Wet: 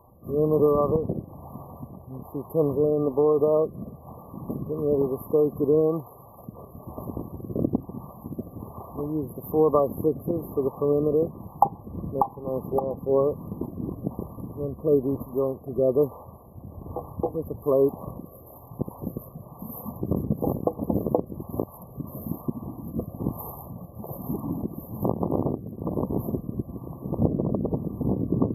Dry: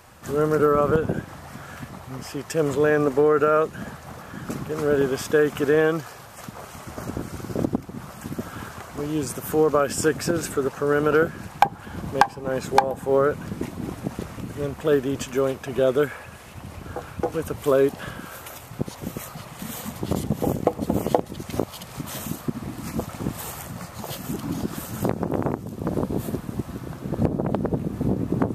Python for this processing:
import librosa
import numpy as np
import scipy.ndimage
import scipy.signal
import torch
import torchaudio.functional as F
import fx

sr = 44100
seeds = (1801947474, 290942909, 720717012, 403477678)

y = fx.rotary(x, sr, hz=1.1)
y = fx.brickwall_bandstop(y, sr, low_hz=1200.0, high_hz=11000.0)